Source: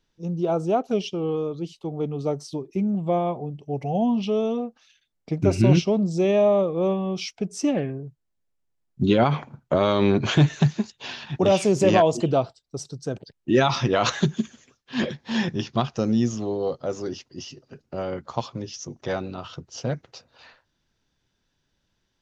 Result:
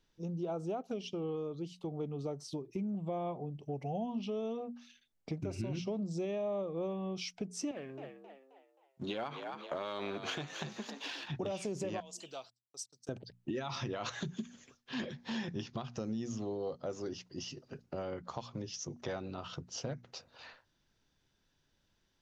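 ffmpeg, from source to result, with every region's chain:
-filter_complex "[0:a]asettb=1/sr,asplit=3[a][b][c];[a]atrim=end=7.714[d];[b]atrim=start=7.71:end=11.28,asetpts=PTS-STARTPTS,afade=t=in:d=0.004:c=qsin,afade=t=out:st=3.566:d=0.004:c=qsin,aeval=exprs='if(lt(val(0),0),0.708*val(0),val(0))':c=same,highpass=f=700:p=1,asplit=5[e][f][g][h][i];[f]adelay=265,afreqshift=66,volume=-12dB[j];[g]adelay=530,afreqshift=132,volume=-20dB[k];[h]adelay=795,afreqshift=198,volume=-27.9dB[l];[i]adelay=1060,afreqshift=264,volume=-35.9dB[m];[e][j][k][l][m]amix=inputs=5:normalize=0,atrim=end_sample=157437[n];[c]atrim=start=11.276[o];[d][n]acrossfade=d=0.004:c1=hsin:c2=qsin[p];[p][o]acrossfade=d=0.004:c1=qsin:c2=hsin,asettb=1/sr,asplit=3[q][r][s];[q]atrim=end=12.004[t];[r]atrim=start=12:end=13.09,asetpts=PTS-STARTPTS,afade=t=in:d=0.004:c=qsin,afade=t=out:st=1.086:d=0.004:c=qsin,agate=range=-26dB:threshold=-41dB:ratio=16:release=100:detection=peak,aderivative[u];[s]atrim=start=13.086[v];[t][u]acrossfade=d=0.004:c1=hsin:c2=qsin[w];[w][v]acrossfade=d=0.004:c1=qsin:c2=hsin,bandreject=f=60:t=h:w=6,bandreject=f=120:t=h:w=6,bandreject=f=180:t=h:w=6,bandreject=f=240:t=h:w=6,alimiter=limit=-16dB:level=0:latency=1:release=204,acompressor=threshold=-37dB:ratio=2.5,volume=-2.5dB"

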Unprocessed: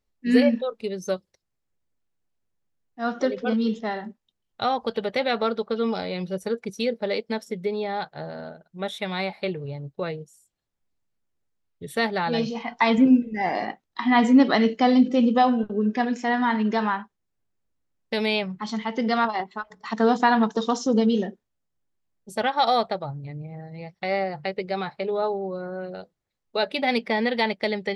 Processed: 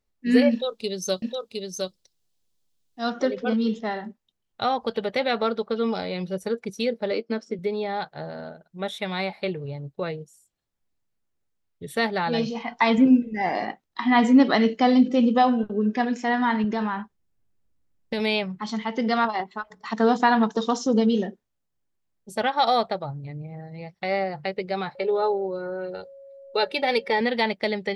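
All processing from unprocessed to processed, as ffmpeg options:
-filter_complex "[0:a]asettb=1/sr,asplit=3[a][b][c];[a]atrim=end=0.514[d];[b]atrim=start=0.51:end=3.1,asetpts=PTS-STARTPTS,afade=t=in:d=0.004:c=qsin,afade=t=out:st=2.586:d=0.004:c=qsin,highshelf=f=2.7k:t=q:w=1.5:g=8.5,aecho=1:1:711:0.668,atrim=end_sample=114219[e];[c]atrim=start=3.096[f];[d][e]acrossfade=d=0.004:c1=hsin:c2=qsin[g];[g][f]acrossfade=d=0.004:c1=qsin:c2=hsin,asettb=1/sr,asplit=3[h][i][j];[h]atrim=end=7.114[k];[i]atrim=start=7.11:end=7.59,asetpts=PTS-STARTPTS,afade=t=in:d=0.004:c=qsin,afade=t=out:st=0.476:d=0.004:c=qsin,highpass=160,equalizer=f=320:t=q:w=4:g=8,equalizer=f=870:t=q:w=4:g=-7,equalizer=f=1.3k:t=q:w=4:g=4,equalizer=f=1.9k:t=q:w=4:g=-7,equalizer=f=3.6k:t=q:w=4:g=-10,lowpass=f=5.8k:w=0.5412,lowpass=f=5.8k:w=1.3066,asplit=2[l][m];[m]adelay=13,volume=-12.5dB[n];[l][n]amix=inputs=2:normalize=0,atrim=end_sample=21168[o];[j]atrim=start=7.586[p];[k][o]acrossfade=d=0.004:c1=hsin:c2=qsin[q];[q][p]acrossfade=d=0.004:c1=qsin:c2=hsin,asettb=1/sr,asplit=3[r][s][t];[r]atrim=end=16.644[u];[s]atrim=start=16.64:end=18.2,asetpts=PTS-STARTPTS,afade=t=in:d=0.004:c=qsin,afade=t=out:st=1.556:d=0.004:c=qsin,lowshelf=f=260:g=8,acompressor=threshold=-22dB:ratio=6:attack=3.2:release=140:knee=1:detection=peak[v];[t]atrim=start=18.196[w];[u][v]acrossfade=d=0.004:c1=hsin:c2=qsin[x];[x][w]acrossfade=d=0.004:c1=qsin:c2=hsin,asettb=1/sr,asplit=3[y][z][aa];[y]atrim=end=24.954[ab];[z]atrim=start=24.95:end=27.21,asetpts=PTS-STARTPTS,afade=t=in:d=0.004:c=qsin,afade=t=out:st=2.256:d=0.004:c=qsin,aeval=exprs='val(0)+0.00562*sin(2*PI*550*n/s)':c=same,aecho=1:1:2.2:0.62,atrim=end_sample=99666[ac];[aa]atrim=start=27.206[ad];[ab][ac]acrossfade=d=0.004:c1=hsin:c2=qsin[ae];[ae][ad]acrossfade=d=0.004:c1=qsin:c2=hsin"

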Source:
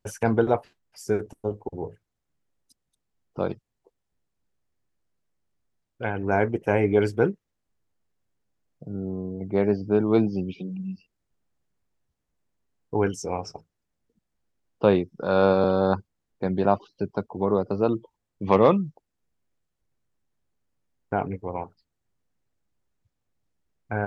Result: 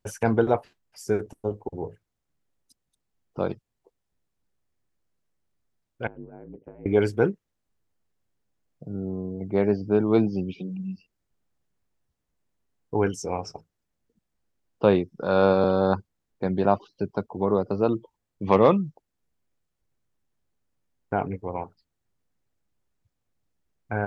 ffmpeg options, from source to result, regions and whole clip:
-filter_complex "[0:a]asettb=1/sr,asplit=3[a][b][c];[a]atrim=end=6.074[d];[b]atrim=start=6.07:end=6.86,asetpts=PTS-STARTPTS,afade=t=in:d=0.004:c=qsin,afade=t=out:st=0.786:d=0.004:c=qsin,acompressor=threshold=-30dB:ratio=8:attack=3.2:release=140:knee=1:detection=peak,bandpass=f=260:t=q:w=1.3,aeval=exprs='val(0)*sin(2*PI*53*n/s)':c=same[e];[c]atrim=start=6.856[f];[d][e]acrossfade=d=0.004:c1=hsin:c2=qsin[g];[g][f]acrossfade=d=0.004:c1=qsin:c2=hsin"

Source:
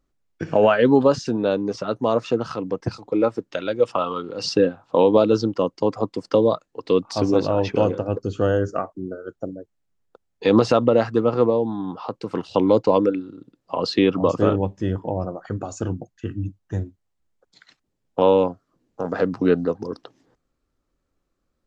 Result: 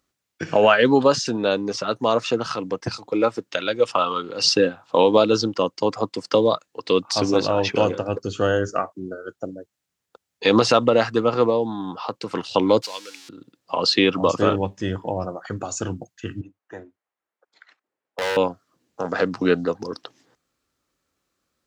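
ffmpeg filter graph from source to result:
-filter_complex "[0:a]asettb=1/sr,asplit=3[a][b][c];[a]atrim=end=12.824[d];[b]atrim=start=12.82:end=13.29,asetpts=PTS-STARTPTS,afade=t=in:d=0.004:c=qsin,afade=t=out:st=0.466:d=0.004:c=qsin,aeval=exprs='val(0)+0.5*0.0251*sgn(val(0))':c=same,bandpass=f=5.1k:t=q:w=1.3[e];[c]atrim=start=13.286[f];[d][e]acrossfade=d=0.004:c1=hsin:c2=qsin[g];[g][f]acrossfade=d=0.004:c1=qsin:c2=hsin,asettb=1/sr,asplit=3[h][i][j];[h]atrim=end=16.414[k];[i]atrim=start=16.41:end=18.37,asetpts=PTS-STARTPTS,afade=t=in:d=0.004:c=qsin,afade=t=out:st=1.956:d=0.004:c=qsin,acrossover=split=320 2100:gain=0.0708 1 0.112[l][m][n];[l][m][n]amix=inputs=3:normalize=0,volume=23.5dB,asoftclip=hard,volume=-23.5dB[o];[j]atrim=start=18.366[p];[k][o]acrossfade=d=0.004:c1=hsin:c2=qsin[q];[q][p]acrossfade=d=0.004:c1=qsin:c2=hsin,highpass=75,tiltshelf=f=1.1k:g=-6,volume=3.5dB"

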